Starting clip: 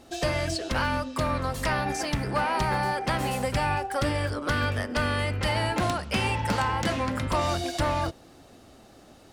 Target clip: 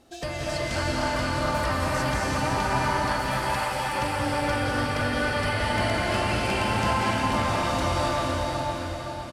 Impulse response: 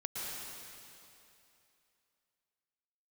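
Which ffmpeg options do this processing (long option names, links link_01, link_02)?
-filter_complex "[0:a]asettb=1/sr,asplit=3[link_01][link_02][link_03];[link_01]atrim=end=2.844[link_04];[link_02]atrim=start=2.84:end=3.86,asetpts=PTS-STARTPTS,afade=type=in:duration=0.004:curve=qsin,afade=type=out:start_time=1.016:duration=0.004:curve=qsin,highpass=700[link_05];[link_03]atrim=start=3.856[link_06];[link_04][link_05]acrossfade=duration=0.004:curve1=hsin:curve2=qsin[link_07];[link_07][link_06]acrossfade=duration=0.004:curve1=qsin:curve2=hsin,aecho=1:1:514|1028|1542|2056|2570:0.447|0.174|0.0679|0.0265|0.0103[link_08];[1:a]atrim=start_sample=2205,asetrate=28665,aresample=44100[link_09];[link_08][link_09]afir=irnorm=-1:irlink=0,volume=-4.5dB"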